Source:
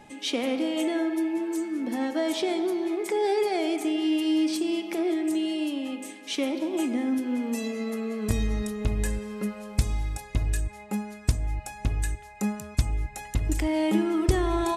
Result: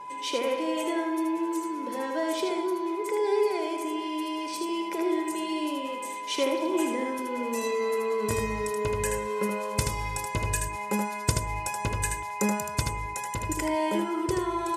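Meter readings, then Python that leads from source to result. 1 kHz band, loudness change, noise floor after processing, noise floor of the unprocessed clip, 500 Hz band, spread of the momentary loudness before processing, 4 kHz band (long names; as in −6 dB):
+6.0 dB, −1.0 dB, −35 dBFS, −46 dBFS, +1.5 dB, 8 LU, −1.0 dB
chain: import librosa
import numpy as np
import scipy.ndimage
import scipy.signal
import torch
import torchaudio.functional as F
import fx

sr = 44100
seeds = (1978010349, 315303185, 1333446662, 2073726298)

y = scipy.signal.sosfilt(scipy.signal.butter(2, 170.0, 'highpass', fs=sr, output='sos'), x)
y = y + 0.6 * np.pad(y, (int(2.0 * sr / 1000.0), 0))[:len(y)]
y = fx.dynamic_eq(y, sr, hz=3700.0, q=2.1, threshold_db=-49.0, ratio=4.0, max_db=-4)
y = fx.rider(y, sr, range_db=10, speed_s=2.0)
y = y + 10.0 ** (-37.0 / 20.0) * np.sin(2.0 * np.pi * 1000.0 * np.arange(len(y)) / sr)
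y = y + 10.0 ** (-4.5 / 20.0) * np.pad(y, (int(78 * sr / 1000.0), 0))[:len(y)]
y = y * 10.0 ** (-1.5 / 20.0)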